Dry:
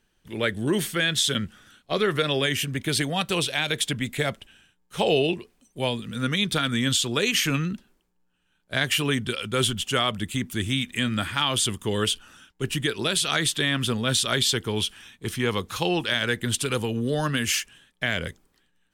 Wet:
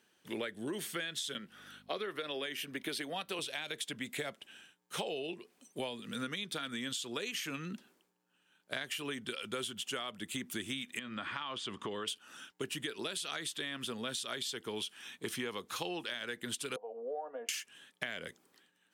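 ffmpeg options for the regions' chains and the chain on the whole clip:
ffmpeg -i in.wav -filter_complex "[0:a]asettb=1/sr,asplit=3[link_01][link_02][link_03];[link_01]atrim=end=1.384[link_04];[link_02]atrim=start=1.38:end=3.39,asetpts=PTS-STARTPTS,afade=type=in:duration=0.004:curve=qsin,afade=type=out:start_time=2.006:duration=0.004:curve=qsin,highpass=190,equalizer=frequency=7300:width=1.9:gain=-7.5,aeval=exprs='val(0)+0.00316*(sin(2*PI*50*n/s)+sin(2*PI*2*50*n/s)/2+sin(2*PI*3*50*n/s)/3+sin(2*PI*4*50*n/s)/4+sin(2*PI*5*50*n/s)/5)':channel_layout=same[link_05];[link_03]atrim=start=3.386[link_06];[link_04][link_05]acrossfade=duration=0.004:curve1=hsin:curve2=qsin[link_07];[link_07][link_06]acrossfade=duration=0.004:curve1=qsin:curve2=hsin,asettb=1/sr,asplit=3[link_08][link_09][link_10];[link_08]atrim=end=10.994[link_11];[link_09]atrim=start=10.99:end=12.08,asetpts=PTS-STARTPTS,afade=type=in:duration=0.004:curve=qsin,afade=type=out:start_time=1.086:duration=0.004:curve=qsin,equalizer=frequency=1100:width_type=o:width=0.4:gain=6,acompressor=threshold=-32dB:ratio=2.5:attack=3.2:release=140:knee=1:detection=peak,lowpass=3700[link_12];[link_10]atrim=start=12.076[link_13];[link_11][link_12]acrossfade=duration=0.004:curve1=hsin:curve2=qsin[link_14];[link_14][link_13]acrossfade=duration=0.004:curve1=qsin:curve2=hsin,asettb=1/sr,asplit=3[link_15][link_16][link_17];[link_15]atrim=end=16.764[link_18];[link_16]atrim=start=16.76:end=17.49,asetpts=PTS-STARTPTS,afade=type=in:duration=0.004:curve=qsin,afade=type=out:start_time=0.726:duration=0.004:curve=qsin,asuperpass=centerf=640:order=4:qfactor=2.5,aecho=1:1:4.2:0.66,atrim=end_sample=32193[link_19];[link_17]atrim=start=17.486[link_20];[link_18][link_19]acrossfade=duration=0.004:curve1=hsin:curve2=qsin[link_21];[link_21][link_20]acrossfade=duration=0.004:curve1=qsin:curve2=hsin,highpass=250,acompressor=threshold=-37dB:ratio=10,volume=1dB" out.wav

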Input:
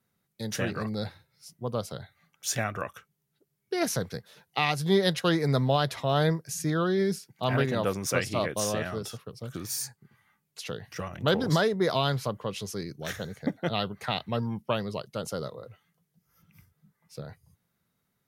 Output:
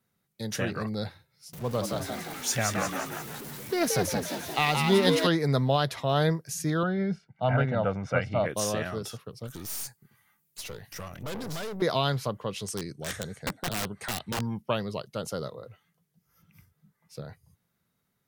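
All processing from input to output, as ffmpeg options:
ffmpeg -i in.wav -filter_complex "[0:a]asettb=1/sr,asplit=3[link_01][link_02][link_03];[link_01]atrim=end=1.534[link_04];[link_02]atrim=start=1.53:end=5.27,asetpts=PTS-STARTPTS,afade=type=in:duration=0.004:curve=qsin,afade=type=out:start_time=3.736:duration=0.004:curve=qsin,aeval=exprs='val(0)+0.5*0.015*sgn(val(0))':channel_layout=same,asplit=8[link_05][link_06][link_07][link_08][link_09][link_10][link_11][link_12];[link_06]adelay=175,afreqshift=81,volume=-4dB[link_13];[link_07]adelay=350,afreqshift=162,volume=-9.8dB[link_14];[link_08]adelay=525,afreqshift=243,volume=-15.7dB[link_15];[link_09]adelay=700,afreqshift=324,volume=-21.5dB[link_16];[link_10]adelay=875,afreqshift=405,volume=-27.4dB[link_17];[link_11]adelay=1050,afreqshift=486,volume=-33.2dB[link_18];[link_12]adelay=1225,afreqshift=567,volume=-39.1dB[link_19];[link_05][link_13][link_14][link_15][link_16][link_17][link_18][link_19]amix=inputs=8:normalize=0,atrim=end_sample=164934[link_20];[link_03]atrim=start=5.266[link_21];[link_04][link_20]acrossfade=duration=0.004:curve1=hsin:curve2=qsin[link_22];[link_22][link_21]acrossfade=duration=0.004:curve1=qsin:curve2=hsin,asettb=1/sr,asplit=3[link_23][link_24][link_25];[link_23]atrim=end=6.834[link_26];[link_24]atrim=start=6.83:end=8.46,asetpts=PTS-STARTPTS,afade=type=in:duration=0.004:curve=qsin,afade=type=out:start_time=1.626:duration=0.004:curve=qsin,lowpass=1900,aecho=1:1:1.4:0.62,atrim=end_sample=71883[link_27];[link_25]atrim=start=8.456[link_28];[link_26][link_27]acrossfade=duration=0.004:curve1=hsin:curve2=qsin[link_29];[link_29][link_28]acrossfade=duration=0.004:curve1=qsin:curve2=hsin,asettb=1/sr,asplit=3[link_30][link_31][link_32];[link_30]atrim=end=9.474[link_33];[link_31]atrim=start=9.47:end=11.82,asetpts=PTS-STARTPTS,afade=type=in:duration=0.004:curve=qsin,afade=type=out:start_time=2.346:duration=0.004:curve=qsin,aemphasis=mode=production:type=50kf,aeval=exprs='(tanh(50.1*val(0)+0.55)-tanh(0.55))/50.1':channel_layout=same[link_34];[link_32]atrim=start=11.816[link_35];[link_33][link_34]acrossfade=duration=0.004:curve1=hsin:curve2=qsin[link_36];[link_36][link_35]acrossfade=duration=0.004:curve1=qsin:curve2=hsin,asettb=1/sr,asplit=3[link_37][link_38][link_39];[link_37]atrim=end=12.634[link_40];[link_38]atrim=start=12.63:end=14.41,asetpts=PTS-STARTPTS,afade=type=in:duration=0.004:curve=qsin,afade=type=out:start_time=1.776:duration=0.004:curve=qsin,lowpass=frequency=12000:width=0.5412,lowpass=frequency=12000:width=1.3066,equalizer=frequency=8400:width=5.2:gain=13.5,aeval=exprs='(mod(15*val(0)+1,2)-1)/15':channel_layout=same[link_41];[link_39]atrim=start=14.406[link_42];[link_40][link_41]acrossfade=duration=0.004:curve1=hsin:curve2=qsin[link_43];[link_43][link_42]acrossfade=duration=0.004:curve1=qsin:curve2=hsin" out.wav

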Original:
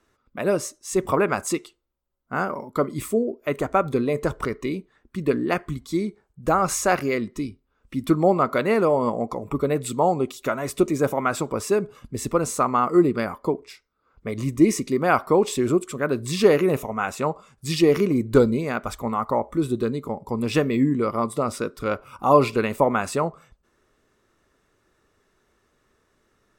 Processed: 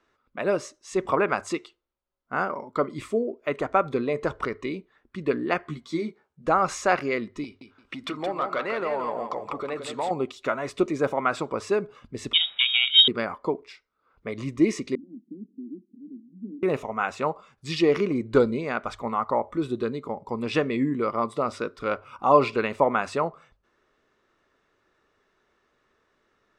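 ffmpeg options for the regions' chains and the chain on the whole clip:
ffmpeg -i in.wav -filter_complex "[0:a]asettb=1/sr,asplit=3[link_01][link_02][link_03];[link_01]atrim=end=5.644[link_04];[link_02]atrim=start=5.64:end=6.47,asetpts=PTS-STARTPTS,afade=type=in:duration=0.004:curve=qsin,afade=type=out:start_time=0.826:duration=0.004:curve=qsin,highpass=120,asplit=2[link_05][link_06];[link_06]adelay=13,volume=-4.5dB[link_07];[link_05][link_07]amix=inputs=2:normalize=0,atrim=end_sample=36603[link_08];[link_03]atrim=start=6.466[link_09];[link_04][link_08]acrossfade=duration=0.004:curve1=hsin:curve2=qsin[link_10];[link_10][link_09]acrossfade=duration=0.004:curve1=qsin:curve2=hsin,asettb=1/sr,asplit=3[link_11][link_12][link_13];[link_11]atrim=end=7.444[link_14];[link_12]atrim=start=7.44:end=10.11,asetpts=PTS-STARTPTS,afade=type=in:duration=0.004:curve=qsin,afade=type=out:start_time=2.666:duration=0.004:curve=qsin,acompressor=threshold=-34dB:ratio=2.5:attack=3.2:release=140:knee=1:detection=peak,asplit=2[link_15][link_16];[link_16]highpass=frequency=720:poles=1,volume=15dB,asoftclip=type=tanh:threshold=-13.5dB[link_17];[link_15][link_17]amix=inputs=2:normalize=0,lowpass=frequency=7700:poles=1,volume=-6dB,aecho=1:1:171|342|513:0.473|0.118|0.0296,atrim=end_sample=117747[link_18];[link_13]atrim=start=10.106[link_19];[link_14][link_18]acrossfade=duration=0.004:curve1=hsin:curve2=qsin[link_20];[link_20][link_19]acrossfade=duration=0.004:curve1=qsin:curve2=hsin,asettb=1/sr,asplit=3[link_21][link_22][link_23];[link_21]atrim=end=12.334[link_24];[link_22]atrim=start=12.33:end=13.08,asetpts=PTS-STARTPTS,afade=type=in:duration=0.004:curve=qsin,afade=type=out:start_time=0.746:duration=0.004:curve=qsin,lowshelf=frequency=440:gain=7.5,aeval=exprs='val(0)*sin(2*PI*310*n/s)':channel_layout=same,lowpass=frequency=3200:width_type=q:width=0.5098,lowpass=frequency=3200:width_type=q:width=0.6013,lowpass=frequency=3200:width_type=q:width=0.9,lowpass=frequency=3200:width_type=q:width=2.563,afreqshift=-3800[link_25];[link_23]atrim=start=13.076[link_26];[link_24][link_25]acrossfade=duration=0.004:curve1=hsin:curve2=qsin[link_27];[link_27][link_26]acrossfade=duration=0.004:curve1=qsin:curve2=hsin,asettb=1/sr,asplit=3[link_28][link_29][link_30];[link_28]atrim=end=14.954[link_31];[link_29]atrim=start=14.95:end=16.63,asetpts=PTS-STARTPTS,afade=type=in:duration=0.004:curve=qsin,afade=type=out:start_time=1.676:duration=0.004:curve=qsin,aeval=exprs='max(val(0),0)':channel_layout=same,asuperpass=centerf=240:order=8:qfactor=2[link_32];[link_30]atrim=start=16.626[link_33];[link_31][link_32]acrossfade=duration=0.004:curve1=hsin:curve2=qsin[link_34];[link_34][link_33]acrossfade=duration=0.004:curve1=qsin:curve2=hsin,lowpass=4300,lowshelf=frequency=280:gain=-9,bandreject=frequency=50:width_type=h:width=6,bandreject=frequency=100:width_type=h:width=6" out.wav

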